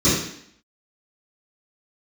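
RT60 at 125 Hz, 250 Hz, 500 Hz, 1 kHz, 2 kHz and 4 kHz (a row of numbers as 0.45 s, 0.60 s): 0.55 s, 0.70 s, 0.65 s, 0.65 s, 0.70 s, 0.70 s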